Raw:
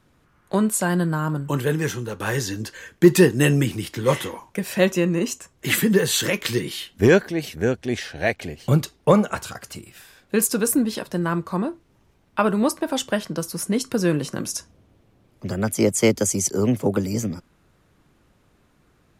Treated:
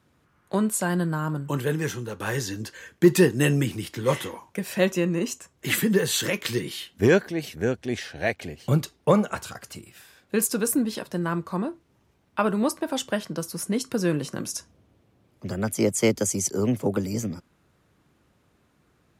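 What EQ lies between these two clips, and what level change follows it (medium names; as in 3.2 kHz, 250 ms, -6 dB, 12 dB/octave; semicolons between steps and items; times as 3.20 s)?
high-pass 58 Hz; -3.5 dB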